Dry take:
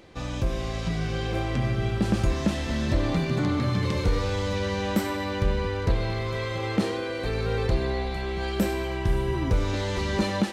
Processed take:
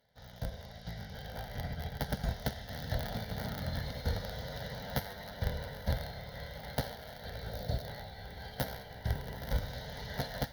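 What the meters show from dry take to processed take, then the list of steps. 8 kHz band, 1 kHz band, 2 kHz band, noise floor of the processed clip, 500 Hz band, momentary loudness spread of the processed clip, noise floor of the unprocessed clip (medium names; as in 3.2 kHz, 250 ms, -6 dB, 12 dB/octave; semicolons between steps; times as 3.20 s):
-10.5 dB, -11.0 dB, -11.0 dB, -50 dBFS, -14.0 dB, 8 LU, -31 dBFS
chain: cycle switcher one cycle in 3, inverted; Chebyshev shaper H 3 -20 dB, 5 -29 dB, 7 -27 dB, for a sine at -13 dBFS; pre-emphasis filter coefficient 0.8; static phaser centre 1.7 kHz, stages 8; time-frequency box 7.51–7.87 s, 760–3500 Hz -7 dB; high-pass 44 Hz; treble shelf 2.7 kHz -9.5 dB; echo that smears into a reverb 930 ms, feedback 63%, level -11.5 dB; upward expansion 1.5:1, over -56 dBFS; trim +9.5 dB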